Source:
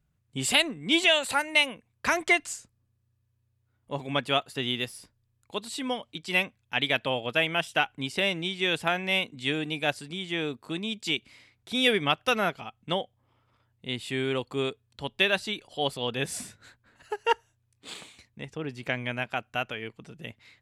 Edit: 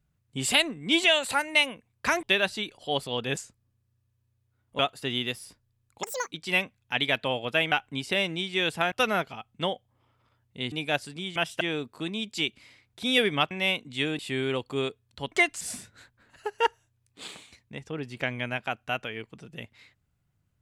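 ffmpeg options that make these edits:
-filter_complex "[0:a]asplit=15[a][b][c][d][e][f][g][h][i][j][k][l][m][n][o];[a]atrim=end=2.232[p];[b]atrim=start=15.128:end=16.272[q];[c]atrim=start=2.518:end=3.942[r];[d]atrim=start=4.318:end=5.564[s];[e]atrim=start=5.56:end=6.13,asetpts=PTS-STARTPTS,asetrate=87318,aresample=44100,atrim=end_sample=12695,asetpts=PTS-STARTPTS[t];[f]atrim=start=6.126:end=7.532[u];[g]atrim=start=7.778:end=8.982[v];[h]atrim=start=12.198:end=14.002[w];[i]atrim=start=9.658:end=10.302[x];[j]atrim=start=7.528:end=7.782[y];[k]atrim=start=10.298:end=12.202[z];[l]atrim=start=8.978:end=9.662[aa];[m]atrim=start=13.998:end=15.132[ab];[n]atrim=start=2.228:end=2.522[ac];[o]atrim=start=16.268[ad];[p][q]acrossfade=d=0.004:c1=hsin:c2=hsin[ae];[ae][r]acrossfade=d=0.004:c1=hsin:c2=hsin[af];[af][s]acrossfade=d=0.004:c1=hsin:c2=hsin[ag];[ag][t]acrossfade=d=0.004:c1=hsin:c2=hsin[ah];[ah][u]acrossfade=d=0.004:c1=hsin:c2=hsin[ai];[ai][v]acrossfade=d=0.004:c1=hsin:c2=hsin[aj];[aj][w]acrossfade=d=0.004:c1=hsin:c2=hsin[ak];[ak][x]acrossfade=d=0.004:c1=hsin:c2=hsin[al];[al][y]acrossfade=d=0.004:c1=hsin:c2=hsin[am];[am][z]acrossfade=d=0.004:c1=hsin:c2=hsin[an];[an][aa]acrossfade=d=0.004:c1=hsin:c2=hsin[ao];[ao][ab]acrossfade=d=0.004:c1=hsin:c2=hsin[ap];[ap][ac]acrossfade=d=0.004:c1=hsin:c2=hsin[aq];[aq][ad]acrossfade=d=0.004:c1=hsin:c2=hsin"

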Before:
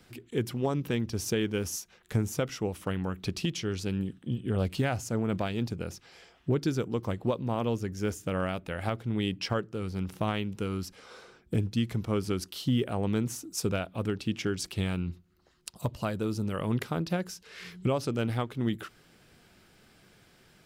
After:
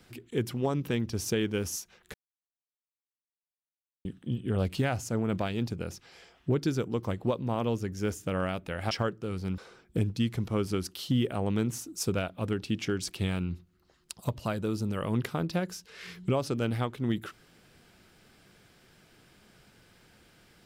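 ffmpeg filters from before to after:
-filter_complex "[0:a]asplit=5[a][b][c][d][e];[a]atrim=end=2.14,asetpts=PTS-STARTPTS,afade=t=out:st=2.136:d=0.004:c=hsin[f];[b]atrim=start=2.14:end=4.05,asetpts=PTS-STARTPTS,volume=0[g];[c]atrim=start=4.05:end=8.912,asetpts=PTS-STARTPTS,afade=t=in:d=0.004:c=hsin[h];[d]atrim=start=9.418:end=10.092[i];[e]atrim=start=11.148[j];[f][g][h]concat=n=3:v=0:a=1[k];[k][i]acrossfade=d=0.004:c1=hsin:c2=hsin[l];[l][j]acrossfade=d=0.004:c1=hsin:c2=hsin"

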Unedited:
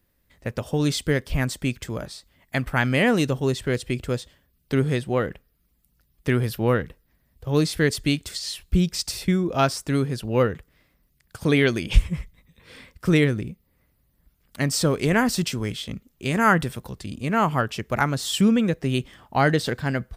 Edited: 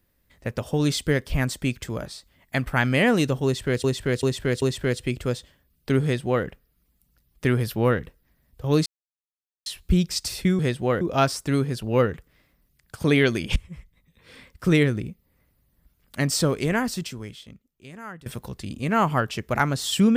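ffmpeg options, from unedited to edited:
-filter_complex "[0:a]asplit=10[a][b][c][d][e][f][g][h][i][j];[a]atrim=end=3.842[k];[b]atrim=start=3.448:end=3.842[l];[c]atrim=start=3.448:end=3.842[m];[d]atrim=start=3.448:end=7.69,asetpts=PTS-STARTPTS,afade=t=out:st=4.238:d=0.004:c=hsin[n];[e]atrim=start=7.69:end=8.49,asetpts=PTS-STARTPTS,volume=0[o];[f]atrim=start=8.49:end=9.422,asetpts=PTS-STARTPTS,afade=t=in:d=0.004:c=hsin[p];[g]atrim=start=4.858:end=5.282[q];[h]atrim=start=9.418:end=11.97,asetpts=PTS-STARTPTS,afade=t=out:st=2.548:d=0.004:c=hsin:silence=0.0944061[r];[i]atrim=start=11.97:end=16.67,asetpts=PTS-STARTPTS,afade=t=in:d=1.5:c=qsin:silence=0.0944061,afade=t=out:st=2.81:d=1.89:c=qua:silence=0.0841395[s];[j]atrim=start=16.67,asetpts=PTS-STARTPTS,afade=t=in:d=0.004:c=hsin:silence=0.0841395[t];[k][l]acrossfade=d=0.004:c1=hsin:c2=hsin[u];[u][m]acrossfade=d=0.004:c1=hsin:c2=hsin[v];[n][o][p]concat=n=3:v=0:a=1[w];[v][w]acrossfade=d=0.004:c1=hsin:c2=hsin[x];[x][q]acrossfade=d=0.004:c1=hsin:c2=hsin[y];[r][s][t]concat=n=3:v=0:a=1[z];[y][z]acrossfade=d=0.004:c1=hsin:c2=hsin"

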